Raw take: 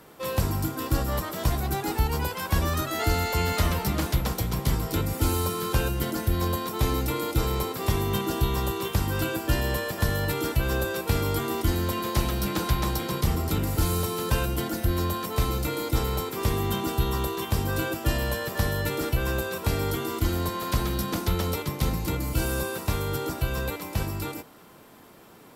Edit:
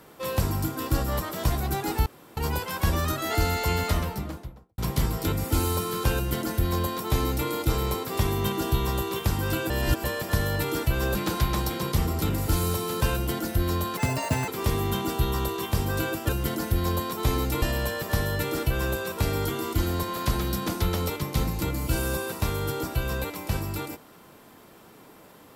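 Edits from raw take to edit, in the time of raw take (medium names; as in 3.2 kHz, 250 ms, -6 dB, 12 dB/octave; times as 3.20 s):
2.06 s: insert room tone 0.31 s
3.38–4.47 s: studio fade out
5.85–7.18 s: copy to 18.08 s
9.39–9.73 s: reverse
10.84–12.44 s: delete
15.26–16.27 s: speed 198%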